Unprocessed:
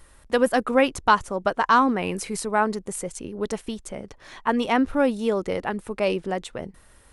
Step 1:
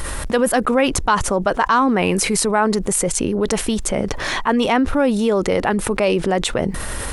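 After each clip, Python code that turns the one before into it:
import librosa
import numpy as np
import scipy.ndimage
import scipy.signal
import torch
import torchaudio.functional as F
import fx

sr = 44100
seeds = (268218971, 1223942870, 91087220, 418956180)

y = fx.env_flatten(x, sr, amount_pct=70)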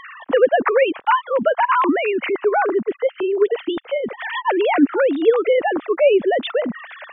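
y = fx.sine_speech(x, sr)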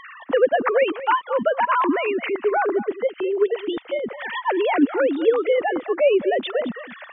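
y = x + 10.0 ** (-15.0 / 20.0) * np.pad(x, (int(217 * sr / 1000.0), 0))[:len(x)]
y = y * librosa.db_to_amplitude(-3.0)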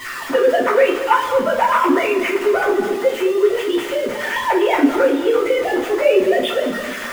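y = x + 0.5 * 10.0 ** (-28.5 / 20.0) * np.sign(x)
y = fx.rev_double_slope(y, sr, seeds[0], early_s=0.3, late_s=2.2, knee_db=-18, drr_db=-8.5)
y = y * librosa.db_to_amplitude(-5.5)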